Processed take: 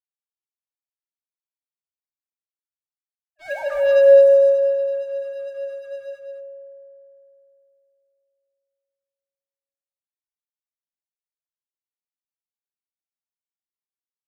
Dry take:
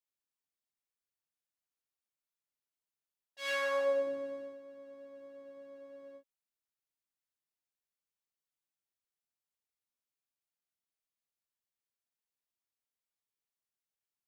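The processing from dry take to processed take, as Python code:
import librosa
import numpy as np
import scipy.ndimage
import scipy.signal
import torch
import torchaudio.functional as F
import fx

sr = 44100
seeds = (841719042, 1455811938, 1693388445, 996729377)

p1 = fx.sine_speech(x, sr)
p2 = scipy.signal.sosfilt(scipy.signal.butter(2, 1300.0, 'lowpass', fs=sr, output='sos'), p1)
p3 = fx.leveller(p2, sr, passes=3)
p4 = p3 + fx.echo_single(p3, sr, ms=208, db=-6.5, dry=0)
p5 = fx.rev_fdn(p4, sr, rt60_s=3.1, lf_ratio=1.0, hf_ratio=0.3, size_ms=10.0, drr_db=6.0)
y = F.gain(torch.from_numpy(p5), 4.0).numpy()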